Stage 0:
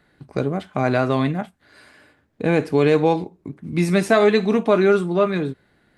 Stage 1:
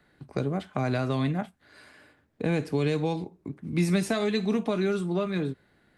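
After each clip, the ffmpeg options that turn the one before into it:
-filter_complex "[0:a]acrossover=split=220|3000[s0][s1][s2];[s1]acompressor=threshold=0.0631:ratio=6[s3];[s0][s3][s2]amix=inputs=3:normalize=0,volume=0.668"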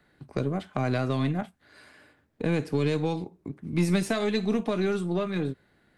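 -af "aeval=exprs='0.224*(cos(1*acos(clip(val(0)/0.224,-1,1)))-cos(1*PI/2))+0.0126*(cos(6*acos(clip(val(0)/0.224,-1,1)))-cos(6*PI/2))+0.00178*(cos(7*acos(clip(val(0)/0.224,-1,1)))-cos(7*PI/2))+0.00316*(cos(8*acos(clip(val(0)/0.224,-1,1)))-cos(8*PI/2))':c=same"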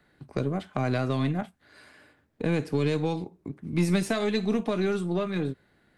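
-af anull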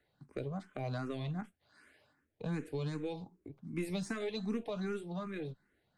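-filter_complex "[0:a]asplit=2[s0][s1];[s1]afreqshift=2.6[s2];[s0][s2]amix=inputs=2:normalize=1,volume=0.376"

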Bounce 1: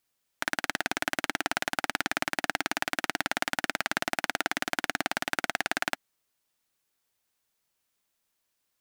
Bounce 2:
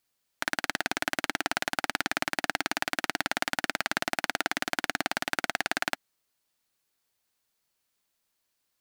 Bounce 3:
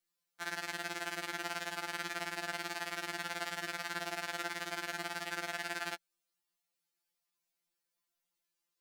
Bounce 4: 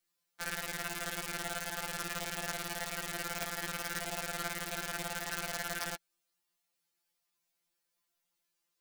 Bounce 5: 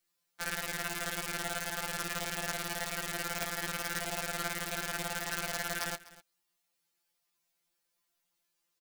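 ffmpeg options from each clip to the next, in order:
-af "equalizer=f=4400:t=o:w=0.25:g=3"
-af "afftfilt=real='re*2.83*eq(mod(b,8),0)':imag='im*2.83*eq(mod(b,8),0)':win_size=2048:overlap=0.75,volume=0.501"
-af "aeval=exprs='(mod(25.1*val(0)+1,2)-1)/25.1':c=same,volume=1.5"
-af "aecho=1:1:249:0.112,volume=1.26"

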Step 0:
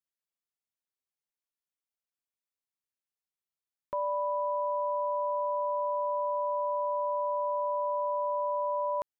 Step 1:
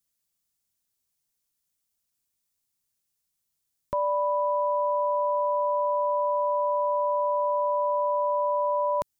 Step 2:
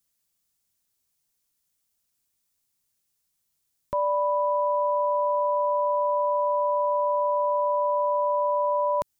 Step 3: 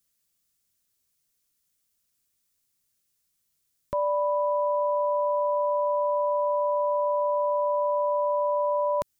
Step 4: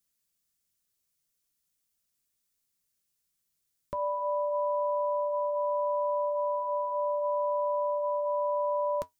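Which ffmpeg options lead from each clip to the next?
-af "bass=f=250:g=11,treble=f=4000:g=11,volume=1.78"
-af "alimiter=limit=0.0841:level=0:latency=1:release=67,volume=1.5"
-af "equalizer=f=860:w=4.1:g=-8.5,volume=1.12"
-af "flanger=delay=4.4:depth=1.7:regen=-74:speed=0.37:shape=triangular"

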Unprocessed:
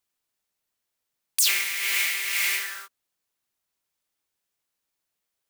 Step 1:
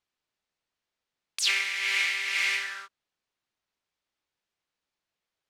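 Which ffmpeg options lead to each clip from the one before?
-af "lowpass=4700"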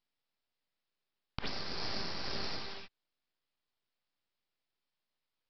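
-af "equalizer=f=1600:t=o:w=0.56:g=-14,acompressor=threshold=0.0178:ratio=6,aresample=11025,aeval=exprs='abs(val(0))':c=same,aresample=44100,volume=1.41"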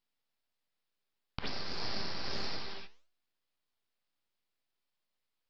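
-af "flanger=delay=8.1:depth=7.7:regen=85:speed=1.6:shape=sinusoidal,volume=1.68"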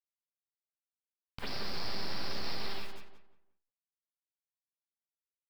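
-filter_complex "[0:a]alimiter=level_in=2:limit=0.0631:level=0:latency=1:release=57,volume=0.501,acrusher=bits=9:mix=0:aa=0.000001,asplit=2[s0][s1];[s1]adelay=177,lowpass=f=2200:p=1,volume=0.531,asplit=2[s2][s3];[s3]adelay=177,lowpass=f=2200:p=1,volume=0.3,asplit=2[s4][s5];[s5]adelay=177,lowpass=f=2200:p=1,volume=0.3,asplit=2[s6][s7];[s7]adelay=177,lowpass=f=2200:p=1,volume=0.3[s8];[s2][s4][s6][s8]amix=inputs=4:normalize=0[s9];[s0][s9]amix=inputs=2:normalize=0,volume=1.58"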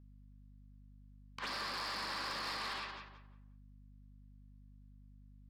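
-af "highpass=320,equalizer=f=400:t=q:w=4:g=-9,equalizer=f=690:t=q:w=4:g=-5,equalizer=f=1100:t=q:w=4:g=9,equalizer=f=1700:t=q:w=4:g=5,lowpass=f=5200:w=0.5412,lowpass=f=5200:w=1.3066,asoftclip=type=tanh:threshold=0.0126,aeval=exprs='val(0)+0.001*(sin(2*PI*50*n/s)+sin(2*PI*2*50*n/s)/2+sin(2*PI*3*50*n/s)/3+sin(2*PI*4*50*n/s)/4+sin(2*PI*5*50*n/s)/5)':c=same,volume=1.41"

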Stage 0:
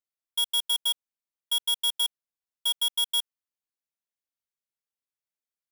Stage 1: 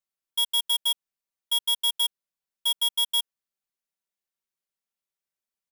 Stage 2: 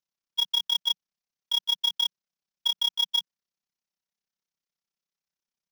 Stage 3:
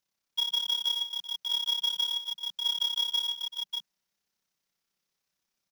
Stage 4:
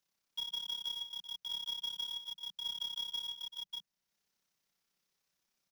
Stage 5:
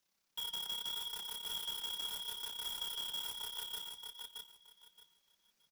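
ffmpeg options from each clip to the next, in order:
-af "aecho=1:1:5.2:0.61"
-af "equalizer=f=180:w=2.6:g=8.5,tremolo=f=33:d=0.919,highshelf=f=7200:t=q:w=3:g=-8.5,volume=1.19"
-filter_complex "[0:a]alimiter=level_in=1.5:limit=0.0631:level=0:latency=1:release=52,volume=0.668,asplit=2[s0][s1];[s1]aecho=0:1:58|146|159|385|593:0.562|0.211|0.15|0.15|0.531[s2];[s0][s2]amix=inputs=2:normalize=0,volume=2.11"
-filter_complex "[0:a]acrossover=split=160[s0][s1];[s1]acompressor=threshold=0.00158:ratio=1.5[s2];[s0][s2]amix=inputs=2:normalize=0"
-filter_complex "[0:a]acrossover=split=3400[s0][s1];[s1]aeval=exprs='(mod(158*val(0)+1,2)-1)/158':c=same[s2];[s0][s2]amix=inputs=2:normalize=0,flanger=delay=3.1:depth=7:regen=-62:speed=0.75:shape=sinusoidal,aecho=1:1:623|1246|1869:0.562|0.118|0.0248,volume=2.24"

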